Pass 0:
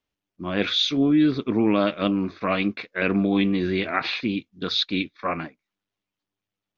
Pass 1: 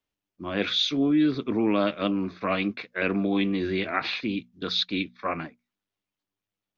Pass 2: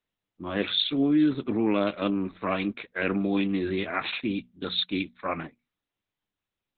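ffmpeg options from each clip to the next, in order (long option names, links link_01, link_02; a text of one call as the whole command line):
ffmpeg -i in.wav -filter_complex "[0:a]bandreject=frequency=60:width_type=h:width=6,bandreject=frequency=120:width_type=h:width=6,bandreject=frequency=180:width_type=h:width=6,bandreject=frequency=240:width_type=h:width=6,acrossover=split=200[link_01][link_02];[link_01]alimiter=level_in=4.5dB:limit=-24dB:level=0:latency=1,volume=-4.5dB[link_03];[link_03][link_02]amix=inputs=2:normalize=0,volume=-2.5dB" out.wav
ffmpeg -i in.wav -ar 48000 -c:a libopus -b:a 8k out.opus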